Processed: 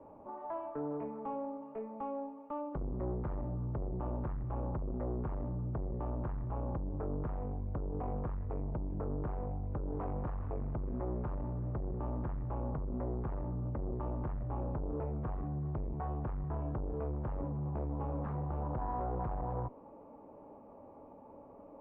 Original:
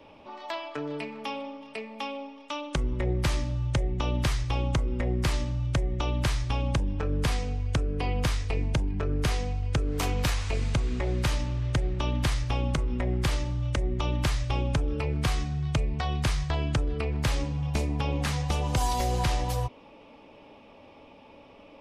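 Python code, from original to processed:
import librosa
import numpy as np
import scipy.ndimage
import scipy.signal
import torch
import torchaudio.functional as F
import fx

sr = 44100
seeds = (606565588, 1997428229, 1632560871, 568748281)

y = fx.tube_stage(x, sr, drive_db=31.0, bias=0.35)
y = scipy.signal.sosfilt(scipy.signal.butter(4, 1100.0, 'lowpass', fs=sr, output='sos'), y)
y = fx.low_shelf(y, sr, hz=140.0, db=-4.0)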